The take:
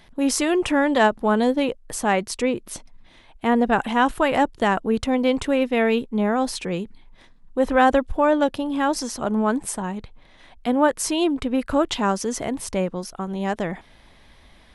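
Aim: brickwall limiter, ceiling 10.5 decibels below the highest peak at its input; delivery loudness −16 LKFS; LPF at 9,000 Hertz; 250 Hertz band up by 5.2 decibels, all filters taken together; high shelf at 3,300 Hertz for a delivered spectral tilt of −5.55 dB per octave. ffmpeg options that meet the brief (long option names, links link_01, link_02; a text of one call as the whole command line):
ffmpeg -i in.wav -af "lowpass=9000,equalizer=frequency=250:width_type=o:gain=6,highshelf=frequency=3300:gain=-7,volume=7.5dB,alimiter=limit=-6dB:level=0:latency=1" out.wav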